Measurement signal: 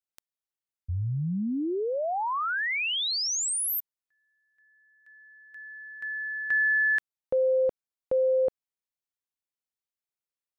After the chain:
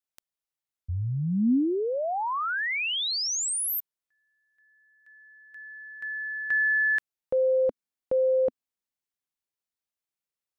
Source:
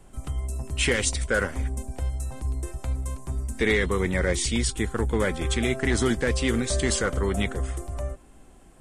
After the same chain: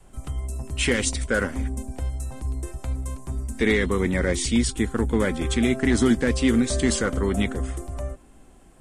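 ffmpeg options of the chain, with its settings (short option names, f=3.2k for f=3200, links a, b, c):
-af "adynamicequalizer=threshold=0.00794:dfrequency=250:dqfactor=2.1:tfrequency=250:tqfactor=2.1:attack=5:release=100:ratio=0.375:range=4:mode=boostabove:tftype=bell"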